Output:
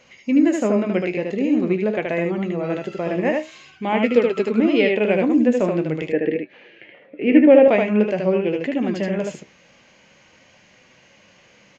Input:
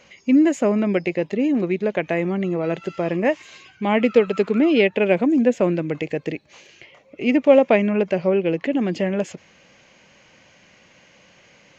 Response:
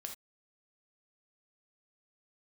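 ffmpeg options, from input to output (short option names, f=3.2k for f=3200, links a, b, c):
-filter_complex "[0:a]aecho=1:1:76:0.668,flanger=delay=7.8:depth=8.9:regen=64:speed=0.46:shape=sinusoidal,asettb=1/sr,asplit=3[a][b][c];[a]atrim=end=6.124[d];[b]atrim=start=6.12:end=7.68,asetpts=PTS-STARTPTS,afade=t=in:d=0.004:c=qsin,afade=t=out:st=1.556:d=0.004:c=qsin,highpass=170,equalizer=f=190:t=q:w=4:g=6,equalizer=f=300:t=q:w=4:g=8,equalizer=f=470:t=q:w=4:g=7,equalizer=f=1.1k:t=q:w=4:g=-8,equalizer=f=1.7k:t=q:w=4:g=9,lowpass=f=3.1k:w=0.5412,lowpass=f=3.1k:w=1.3066[e];[c]atrim=start=7.676[f];[d][e]acrossfade=d=0.004:c1=hsin:c2=qsin[g];[g][f]acrossfade=d=0.004:c1=qsin:c2=hsin,volume=2.5dB"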